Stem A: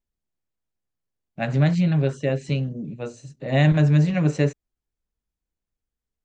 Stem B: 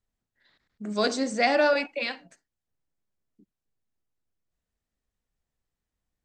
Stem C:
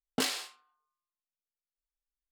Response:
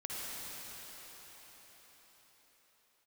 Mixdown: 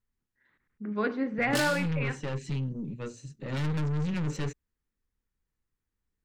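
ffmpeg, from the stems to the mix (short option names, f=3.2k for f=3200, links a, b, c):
-filter_complex "[0:a]aeval=exprs='(tanh(20*val(0)+0.35)-tanh(0.35))/20':c=same,volume=-1.5dB[a];[1:a]lowpass=f=2.3k:w=0.5412,lowpass=f=2.3k:w=1.3066,volume=-1dB,asplit=2[b][c];[2:a]adelay=1350,volume=-1.5dB[d];[c]apad=whole_len=275265[e];[a][e]sidechaincompress=threshold=-27dB:ratio=8:attack=8.9:release=104[f];[f][b][d]amix=inputs=3:normalize=0,equalizer=f=660:w=3.1:g=-12.5"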